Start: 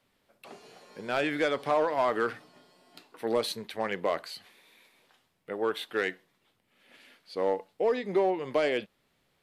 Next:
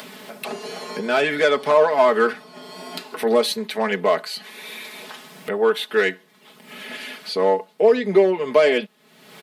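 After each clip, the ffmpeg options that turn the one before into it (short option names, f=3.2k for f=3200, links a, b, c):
-af "highpass=f=150:w=0.5412,highpass=f=150:w=1.3066,aecho=1:1:4.7:0.87,acompressor=mode=upward:threshold=-29dB:ratio=2.5,volume=7.5dB"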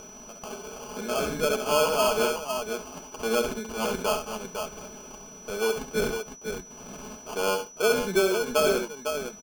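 -af "acrusher=samples=23:mix=1:aa=0.000001,aecho=1:1:67|504:0.398|0.473,aeval=exprs='val(0)+0.0141*sin(2*PI*5900*n/s)':c=same,volume=-8.5dB"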